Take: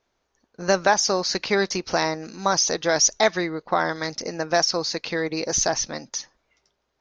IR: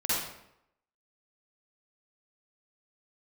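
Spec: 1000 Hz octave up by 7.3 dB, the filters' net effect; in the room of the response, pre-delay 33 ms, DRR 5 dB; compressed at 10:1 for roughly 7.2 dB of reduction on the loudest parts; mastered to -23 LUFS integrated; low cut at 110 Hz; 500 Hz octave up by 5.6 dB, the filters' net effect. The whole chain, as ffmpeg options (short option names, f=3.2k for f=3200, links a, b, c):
-filter_complex "[0:a]highpass=110,equalizer=f=500:t=o:g=4.5,equalizer=f=1k:t=o:g=8,acompressor=threshold=-15dB:ratio=10,asplit=2[a][b];[1:a]atrim=start_sample=2205,adelay=33[c];[b][c]afir=irnorm=-1:irlink=0,volume=-14.5dB[d];[a][d]amix=inputs=2:normalize=0,volume=-1.5dB"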